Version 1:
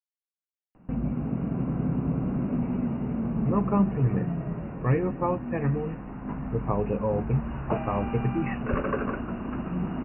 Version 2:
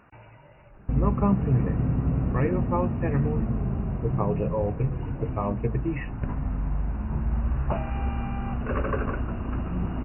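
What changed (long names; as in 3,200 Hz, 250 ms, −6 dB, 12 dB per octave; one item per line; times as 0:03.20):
speech: entry −2.50 s
background: add low shelf with overshoot 130 Hz +9.5 dB, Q 1.5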